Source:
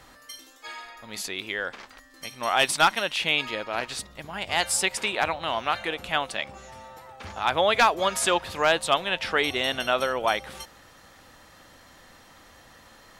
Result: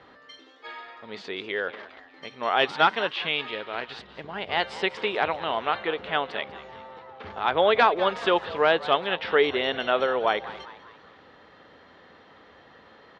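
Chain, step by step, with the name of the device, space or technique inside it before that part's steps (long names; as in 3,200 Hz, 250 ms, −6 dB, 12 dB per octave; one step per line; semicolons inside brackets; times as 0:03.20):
0:03.11–0:04.08: parametric band 450 Hz −6 dB 2.6 octaves
frequency-shifting delay pedal into a guitar cabinet (echo with shifted repeats 197 ms, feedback 49%, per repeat +120 Hz, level −16 dB; loudspeaker in its box 100–3,600 Hz, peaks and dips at 120 Hz −4 dB, 430 Hz +9 dB, 2,500 Hz −4 dB)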